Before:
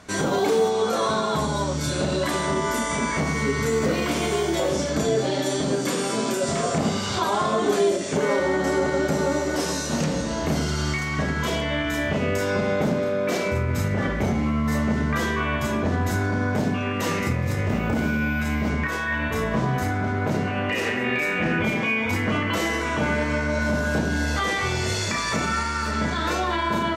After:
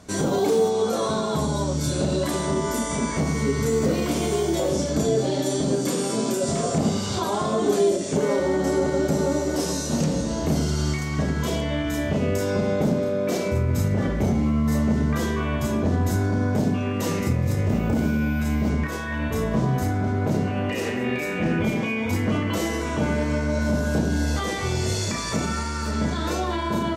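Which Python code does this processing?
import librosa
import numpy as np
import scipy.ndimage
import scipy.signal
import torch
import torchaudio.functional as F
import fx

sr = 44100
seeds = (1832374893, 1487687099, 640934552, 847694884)

y = fx.peak_eq(x, sr, hz=1800.0, db=-9.5, octaves=2.4)
y = y * 10.0 ** (2.5 / 20.0)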